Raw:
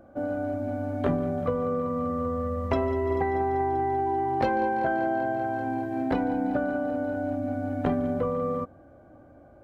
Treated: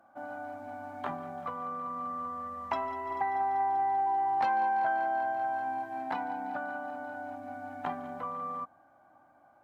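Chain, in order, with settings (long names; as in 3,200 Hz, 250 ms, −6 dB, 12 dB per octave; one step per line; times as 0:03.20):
high-pass filter 160 Hz 12 dB per octave
low shelf with overshoot 640 Hz −9.5 dB, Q 3
level −4.5 dB
Opus 64 kbit/s 48,000 Hz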